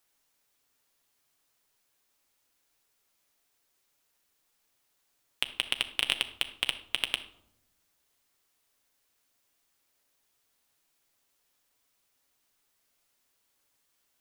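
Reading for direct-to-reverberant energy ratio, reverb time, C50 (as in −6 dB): 7.5 dB, 0.80 s, 13.5 dB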